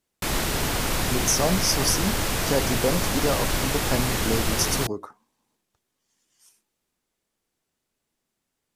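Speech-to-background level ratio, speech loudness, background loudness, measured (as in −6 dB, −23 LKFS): −1.5 dB, −26.5 LKFS, −25.0 LKFS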